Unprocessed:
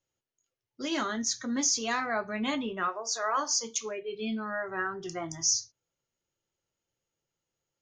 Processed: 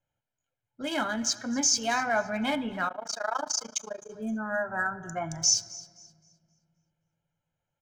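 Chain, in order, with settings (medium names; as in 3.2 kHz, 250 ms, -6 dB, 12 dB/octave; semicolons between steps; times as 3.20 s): local Wiener filter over 9 samples; comb 1.3 ms, depth 71%; on a send: thinning echo 262 ms, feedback 29%, level -19.5 dB; 3.79–5.16 s: on the sum: time-frequency box 1.9–5.7 kHz -18 dB; simulated room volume 3400 m³, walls mixed, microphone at 0.38 m; 2.88–4.10 s: AM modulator 27 Hz, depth 95%; trim +2 dB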